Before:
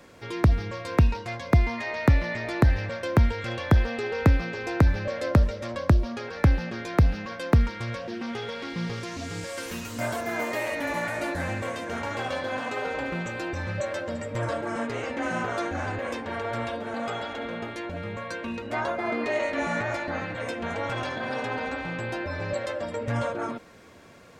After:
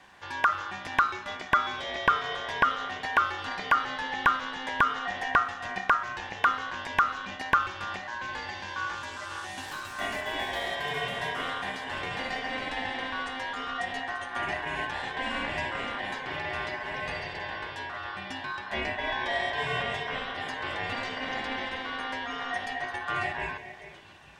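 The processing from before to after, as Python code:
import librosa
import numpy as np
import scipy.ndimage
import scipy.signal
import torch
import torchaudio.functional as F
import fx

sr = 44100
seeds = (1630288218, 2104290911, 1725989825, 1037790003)

y = scipy.signal.sosfilt(scipy.signal.butter(2, 85.0, 'highpass', fs=sr, output='sos'), x)
y = fx.high_shelf(y, sr, hz=8500.0, db=-8.5)
y = fx.echo_stepped(y, sr, ms=425, hz=810.0, octaves=1.4, feedback_pct=70, wet_db=-9.0)
y = fx.rev_schroeder(y, sr, rt60_s=0.79, comb_ms=31, drr_db=14.0)
y = y * np.sin(2.0 * np.pi * 1300.0 * np.arange(len(y)) / sr)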